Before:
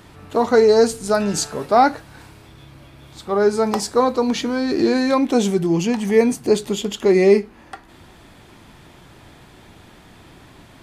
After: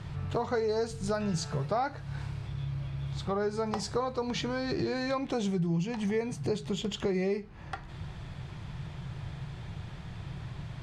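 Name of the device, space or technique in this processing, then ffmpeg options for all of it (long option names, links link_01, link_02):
jukebox: -af "lowpass=6000,lowshelf=frequency=190:width_type=q:width=3:gain=8.5,acompressor=threshold=-27dB:ratio=4,volume=-2.5dB"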